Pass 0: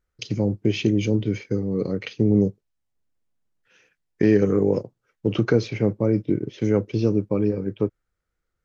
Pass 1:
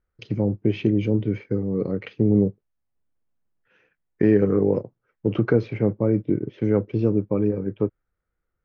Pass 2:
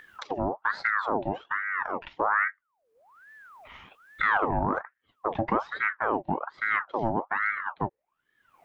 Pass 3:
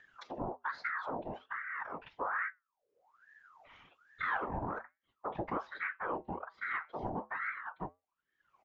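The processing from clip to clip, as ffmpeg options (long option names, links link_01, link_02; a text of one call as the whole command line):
ffmpeg -i in.wav -af "lowpass=2000" out.wav
ffmpeg -i in.wav -af "acompressor=mode=upward:threshold=-25dB:ratio=2.5,asoftclip=type=tanh:threshold=-8.5dB,aeval=exprs='val(0)*sin(2*PI*1100*n/s+1100*0.6/1.2*sin(2*PI*1.2*n/s))':channel_layout=same,volume=-3dB" out.wav
ffmpeg -i in.wav -af "afftfilt=real='hypot(re,im)*cos(2*PI*random(0))':imag='hypot(re,im)*sin(2*PI*random(1))':win_size=512:overlap=0.75,flanger=delay=5.5:depth=1.5:regen=-83:speed=2:shape=sinusoidal,aresample=16000,aresample=44100" out.wav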